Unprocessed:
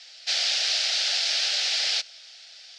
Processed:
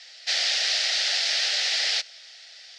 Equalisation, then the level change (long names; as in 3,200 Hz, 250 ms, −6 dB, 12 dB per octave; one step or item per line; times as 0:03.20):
high-pass filter 250 Hz
low-shelf EQ 350 Hz +8 dB
parametric band 1,900 Hz +8 dB 0.23 octaves
0.0 dB